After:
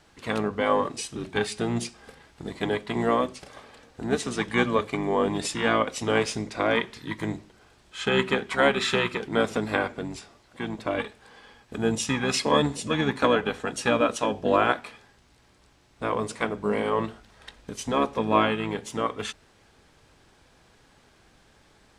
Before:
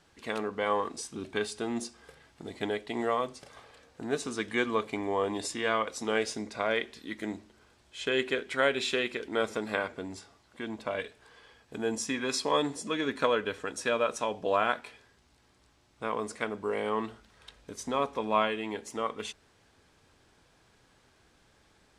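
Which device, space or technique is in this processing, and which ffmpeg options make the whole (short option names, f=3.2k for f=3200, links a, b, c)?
octave pedal: -filter_complex "[0:a]asplit=2[a][b];[b]asetrate=22050,aresample=44100,atempo=2,volume=-5dB[c];[a][c]amix=inputs=2:normalize=0,volume=4.5dB"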